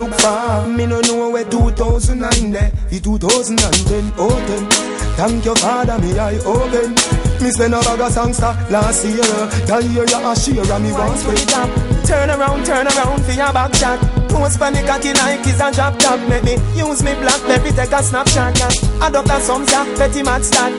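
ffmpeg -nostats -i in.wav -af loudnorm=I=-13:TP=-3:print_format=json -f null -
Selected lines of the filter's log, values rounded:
"input_i" : "-14.4",
"input_tp" : "-0.9",
"input_lra" : "1.4",
"input_thresh" : "-24.4",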